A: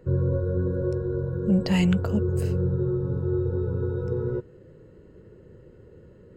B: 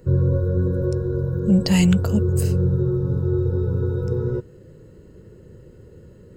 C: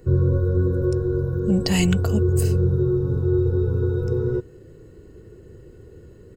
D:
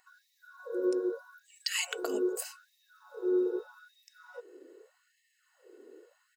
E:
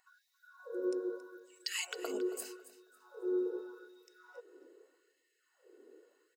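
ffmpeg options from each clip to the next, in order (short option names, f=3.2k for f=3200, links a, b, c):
-af "bass=f=250:g=4,treble=f=4k:g=12,volume=2dB"
-af "aecho=1:1:2.7:0.4"
-af "afftfilt=real='re*gte(b*sr/1024,240*pow(1800/240,0.5+0.5*sin(2*PI*0.81*pts/sr)))':imag='im*gte(b*sr/1024,240*pow(1800/240,0.5+0.5*sin(2*PI*0.81*pts/sr)))':win_size=1024:overlap=0.75,volume=-5dB"
-af "aecho=1:1:274|548|822:0.168|0.0453|0.0122,volume=-5.5dB"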